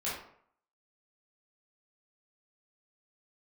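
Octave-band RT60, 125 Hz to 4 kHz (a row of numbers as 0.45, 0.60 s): 0.60, 0.55, 0.60, 0.65, 0.50, 0.40 s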